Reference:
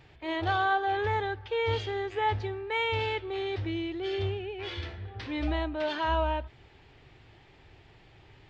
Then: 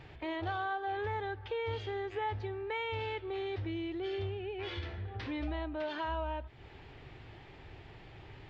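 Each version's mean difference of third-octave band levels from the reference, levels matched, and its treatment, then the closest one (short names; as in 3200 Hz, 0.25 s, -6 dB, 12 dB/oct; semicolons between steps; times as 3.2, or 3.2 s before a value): 3.5 dB: high shelf 4900 Hz -9.5 dB; compressor 2.5:1, threshold -44 dBFS, peak gain reduction 14 dB; gain +4.5 dB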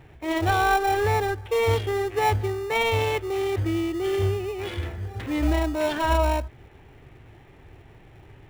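6.0 dB: Wiener smoothing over 9 samples; in parallel at -7.5 dB: sample-rate reducer 1600 Hz, jitter 0%; on the sum: gain +5 dB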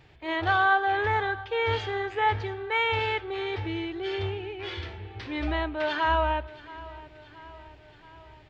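2.5 dB: dynamic EQ 1500 Hz, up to +7 dB, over -43 dBFS, Q 0.81; feedback echo 0.675 s, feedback 59%, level -18.5 dB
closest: third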